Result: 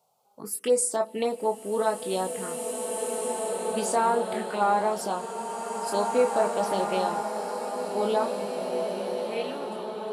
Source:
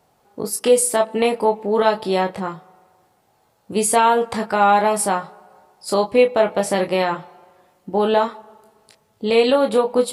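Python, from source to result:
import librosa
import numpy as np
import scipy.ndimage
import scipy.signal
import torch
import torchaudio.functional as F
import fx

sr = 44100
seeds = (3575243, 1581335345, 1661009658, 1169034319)

y = fx.fade_out_tail(x, sr, length_s=1.71)
y = scipy.signal.sosfilt(scipy.signal.butter(2, 190.0, 'highpass', fs=sr, output='sos'), y)
y = fx.high_shelf(y, sr, hz=4400.0, db=4.0)
y = fx.env_phaser(y, sr, low_hz=300.0, high_hz=3200.0, full_db=-12.5)
y = fx.rev_bloom(y, sr, seeds[0], attack_ms=2460, drr_db=2.0)
y = y * librosa.db_to_amplitude(-8.0)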